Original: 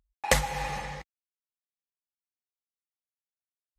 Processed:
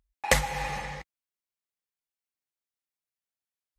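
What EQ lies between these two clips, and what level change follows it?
parametric band 2,100 Hz +2.5 dB 0.63 octaves
0.0 dB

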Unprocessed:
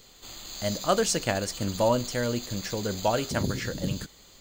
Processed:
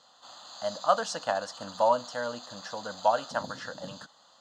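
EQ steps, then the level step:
band-pass filter 450–3,200 Hz
phaser with its sweep stopped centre 940 Hz, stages 4
+4.5 dB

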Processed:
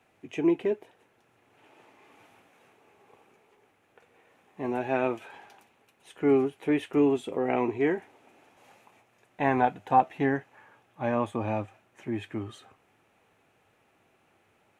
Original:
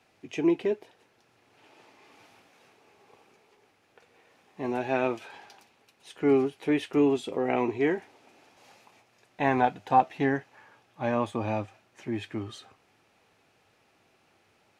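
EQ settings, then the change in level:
parametric band 4,800 Hz −11 dB 0.78 octaves
0.0 dB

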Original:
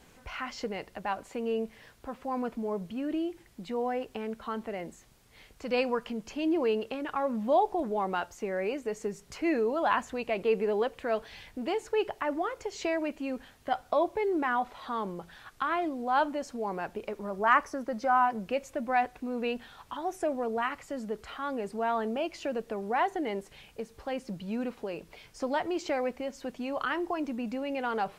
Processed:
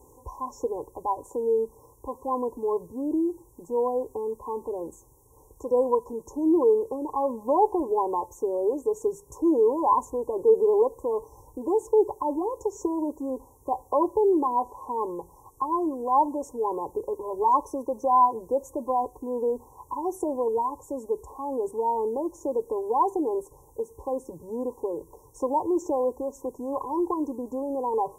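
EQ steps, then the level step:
high-pass filter 44 Hz
linear-phase brick-wall band-stop 1,100–5,300 Hz
phaser with its sweep stopped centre 1,000 Hz, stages 8
+8.5 dB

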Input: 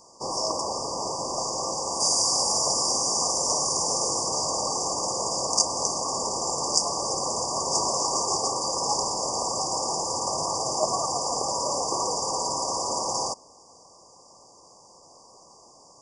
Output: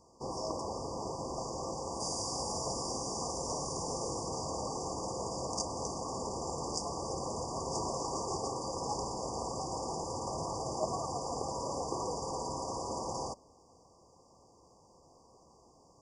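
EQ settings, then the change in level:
tilt shelving filter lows +7 dB, about 840 Hz
parametric band 64 Hz +7 dB 1.1 octaves
notch filter 590 Hz, Q 14
−9.0 dB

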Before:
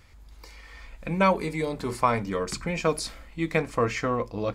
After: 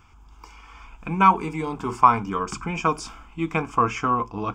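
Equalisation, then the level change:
parametric band 740 Hz +12 dB 3 octaves
phaser with its sweep stopped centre 2,800 Hz, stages 8
−1.0 dB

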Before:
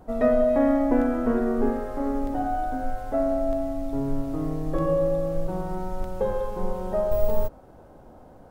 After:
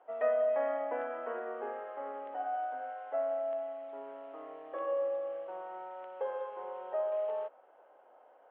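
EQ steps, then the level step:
high-pass filter 530 Hz 24 dB per octave
Chebyshev low-pass filter 3,100 Hz, order 5
−6.0 dB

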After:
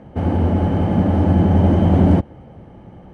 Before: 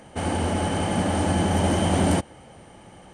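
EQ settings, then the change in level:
high-pass filter 140 Hz 6 dB per octave
high-frequency loss of the air 88 metres
spectral tilt −4.5 dB per octave
0.0 dB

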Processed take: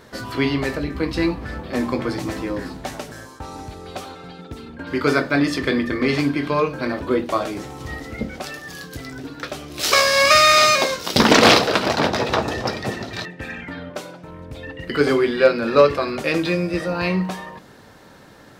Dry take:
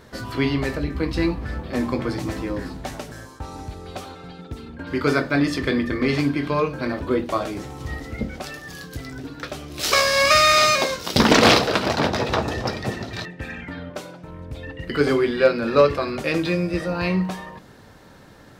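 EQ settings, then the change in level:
low-shelf EQ 120 Hz −8 dB
+2.5 dB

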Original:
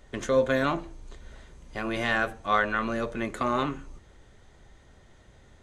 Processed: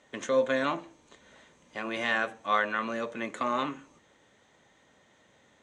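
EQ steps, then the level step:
loudspeaker in its box 260–8,200 Hz, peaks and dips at 380 Hz −8 dB, 710 Hz −4 dB, 1,400 Hz −4 dB, 4,800 Hz −7 dB
0.0 dB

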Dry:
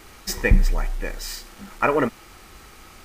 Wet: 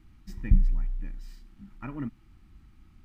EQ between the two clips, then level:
drawn EQ curve 140 Hz 0 dB, 310 Hz −6 dB, 450 Hz −29 dB, 850 Hz −20 dB, 3,100 Hz −19 dB, 6,500 Hz −26 dB
−4.0 dB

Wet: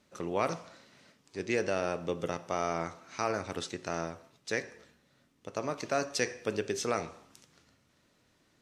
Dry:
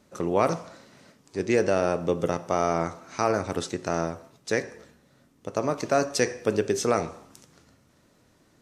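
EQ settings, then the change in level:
parametric band 3,000 Hz +7 dB 2.1 octaves
−9.0 dB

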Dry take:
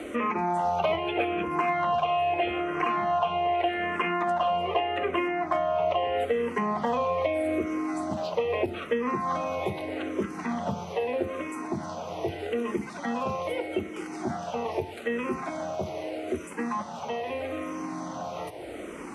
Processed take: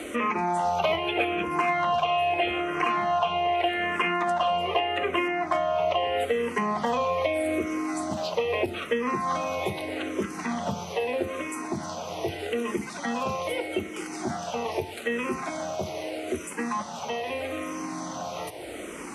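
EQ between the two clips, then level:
high-shelf EQ 2,700 Hz +10 dB
0.0 dB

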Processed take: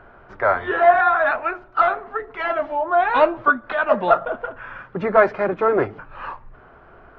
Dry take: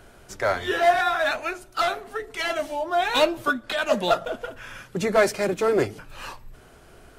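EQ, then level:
high-frequency loss of the air 170 metres
head-to-tape spacing loss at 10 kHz 32 dB
parametric band 1,200 Hz +13.5 dB 1.9 octaves
0.0 dB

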